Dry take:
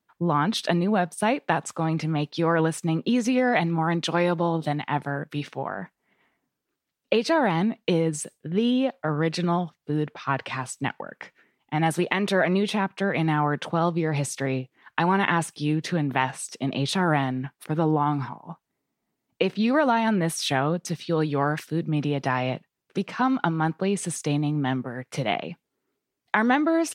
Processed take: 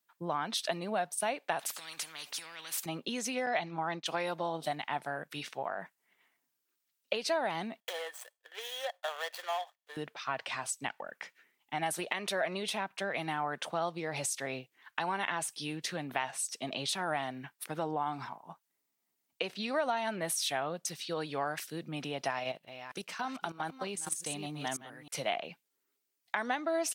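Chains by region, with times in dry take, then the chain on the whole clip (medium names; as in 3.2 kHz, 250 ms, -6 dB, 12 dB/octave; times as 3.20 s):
1.59–2.86 s: compression 5:1, threshold -30 dBFS + spectrum-flattening compressor 4:1
3.46–4.06 s: low-pass 6.6 kHz 24 dB/octave + gate -27 dBFS, range -13 dB
7.80–9.97 s: median filter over 25 samples + steep high-pass 550 Hz + small resonant body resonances 1.8/3.3 kHz, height 13 dB, ringing for 25 ms
22.30–25.15 s: chunks repeated in reverse 309 ms, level -8.5 dB + treble shelf 6.9 kHz +8 dB + level held to a coarse grid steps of 13 dB
whole clip: tilt EQ +3.5 dB/octave; compression 2:1, threshold -28 dBFS; dynamic bell 660 Hz, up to +8 dB, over -47 dBFS, Q 2.6; trim -7 dB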